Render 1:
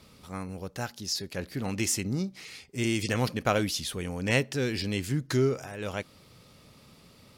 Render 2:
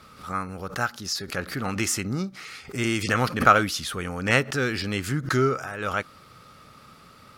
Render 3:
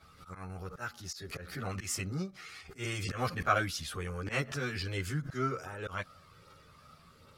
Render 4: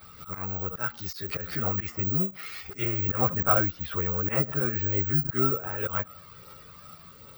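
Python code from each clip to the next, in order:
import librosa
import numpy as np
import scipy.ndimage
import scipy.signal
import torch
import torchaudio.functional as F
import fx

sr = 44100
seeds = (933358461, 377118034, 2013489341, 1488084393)

y1 = fx.peak_eq(x, sr, hz=1300.0, db=15.0, octaves=0.81)
y1 = fx.notch(y1, sr, hz=1000.0, q=12.0)
y1 = fx.pre_swell(y1, sr, db_per_s=140.0)
y1 = y1 * librosa.db_to_amplitude(1.5)
y2 = fx.auto_swell(y1, sr, attack_ms=111.0)
y2 = fx.chorus_voices(y2, sr, voices=6, hz=0.32, base_ms=12, depth_ms=1.5, mix_pct=60)
y2 = y2 * librosa.db_to_amplitude(-6.0)
y3 = fx.fold_sine(y2, sr, drive_db=3, ceiling_db=-13.0)
y3 = fx.env_lowpass_down(y3, sr, base_hz=1200.0, full_db=-25.5)
y3 = (np.kron(y3[::2], np.eye(2)[0]) * 2)[:len(y3)]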